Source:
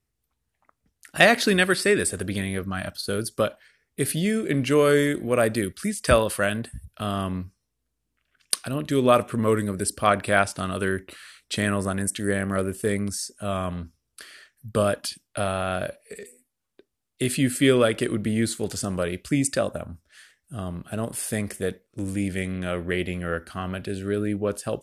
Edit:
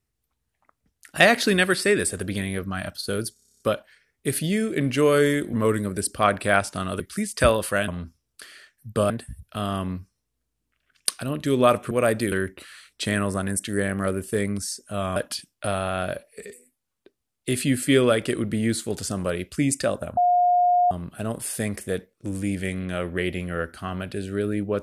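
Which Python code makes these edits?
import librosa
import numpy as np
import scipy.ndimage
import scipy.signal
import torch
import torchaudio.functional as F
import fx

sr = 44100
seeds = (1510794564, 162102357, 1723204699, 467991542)

y = fx.edit(x, sr, fx.stutter(start_s=3.33, slice_s=0.03, count=10),
    fx.swap(start_s=5.26, length_s=0.41, other_s=9.36, other_length_s=1.47),
    fx.move(start_s=13.67, length_s=1.22, to_s=6.55),
    fx.bleep(start_s=19.9, length_s=0.74, hz=713.0, db=-15.5), tone=tone)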